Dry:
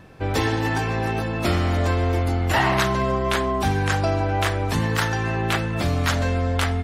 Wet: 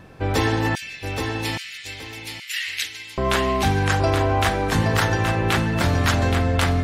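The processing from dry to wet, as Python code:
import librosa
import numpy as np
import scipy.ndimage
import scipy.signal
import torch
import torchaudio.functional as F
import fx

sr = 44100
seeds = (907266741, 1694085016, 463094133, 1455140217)

y = fx.steep_highpass(x, sr, hz=2100.0, slope=36, at=(0.75, 3.18))
y = fx.echo_feedback(y, sr, ms=823, feedback_pct=23, wet_db=-6)
y = y * librosa.db_to_amplitude(1.5)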